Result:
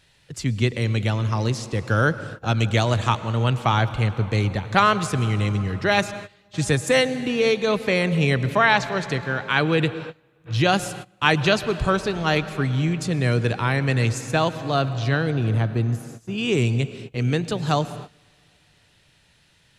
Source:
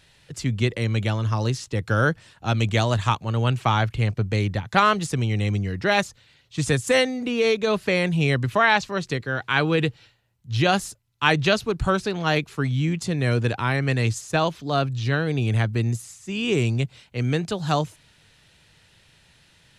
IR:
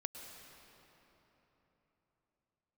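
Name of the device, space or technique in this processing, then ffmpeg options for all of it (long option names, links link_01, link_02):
keyed gated reverb: -filter_complex "[0:a]asettb=1/sr,asplit=3[link_01][link_02][link_03];[link_01]atrim=end=15.304[link_04];[link_02]atrim=start=15.3:end=16.38,asetpts=PTS-STARTPTS,afade=type=in:duration=0.004:curve=qsin,afade=type=out:start_time=1.076:duration=0.004:curve=qsin,equalizer=frequency=2000:width_type=o:width=1:gain=-7,equalizer=frequency=4000:width_type=o:width=1:gain=-3,equalizer=frequency=8000:width_type=o:width=1:gain=-10[link_05];[link_03]atrim=start=16.376[link_06];[link_04][link_05]acrossfade=duration=0.004:curve1=hsin:curve2=qsin[link_07];[link_07][link_06]acrossfade=duration=0.004:curve1=qsin:curve2=hsin,asplit=3[link_08][link_09][link_10];[1:a]atrim=start_sample=2205[link_11];[link_09][link_11]afir=irnorm=-1:irlink=0[link_12];[link_10]apad=whole_len=872333[link_13];[link_12][link_13]sidechaingate=range=-22dB:threshold=-48dB:ratio=16:detection=peak,volume=-2dB[link_14];[link_08][link_14]amix=inputs=2:normalize=0,volume=-3dB"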